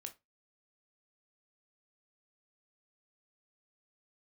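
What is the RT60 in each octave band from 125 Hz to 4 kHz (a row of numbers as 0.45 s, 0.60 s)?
0.30 s, 0.20 s, 0.20 s, 0.20 s, 0.20 s, 0.20 s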